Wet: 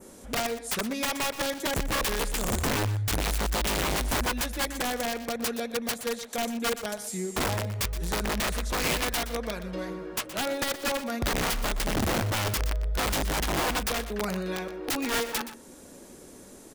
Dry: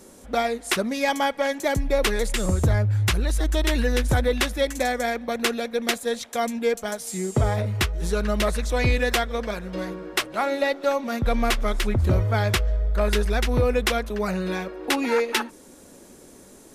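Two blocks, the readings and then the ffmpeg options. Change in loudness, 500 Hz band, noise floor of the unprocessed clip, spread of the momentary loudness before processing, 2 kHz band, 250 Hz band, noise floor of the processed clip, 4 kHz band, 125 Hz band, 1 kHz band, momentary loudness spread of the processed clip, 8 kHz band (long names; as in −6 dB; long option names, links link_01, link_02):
−4.5 dB, −8.0 dB, −48 dBFS, 6 LU, −4.0 dB, −5.0 dB, −49 dBFS, −2.0 dB, −8.5 dB, −4.0 dB, 7 LU, +1.0 dB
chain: -filter_complex "[0:a]adynamicequalizer=threshold=0.0112:dfrequency=4400:dqfactor=1.1:tfrequency=4400:tqfactor=1.1:attack=5:release=100:ratio=0.375:range=1.5:mode=cutabove:tftype=bell,asplit=2[link_01][link_02];[link_02]acompressor=threshold=-34dB:ratio=10,volume=1dB[link_03];[link_01][link_03]amix=inputs=2:normalize=0,aeval=exprs='(mod(5.62*val(0)+1,2)-1)/5.62':channel_layout=same,aecho=1:1:121:0.224,volume=-7dB"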